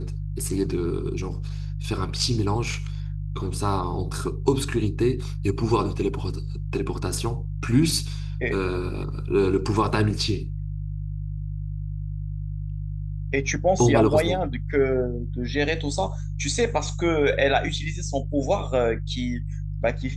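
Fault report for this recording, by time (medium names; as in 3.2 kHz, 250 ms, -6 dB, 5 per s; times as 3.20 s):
hum 50 Hz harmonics 3 -30 dBFS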